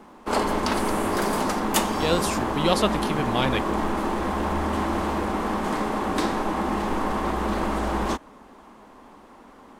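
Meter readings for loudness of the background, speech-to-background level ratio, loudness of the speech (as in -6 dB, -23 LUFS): -25.5 LUFS, -0.5 dB, -26.0 LUFS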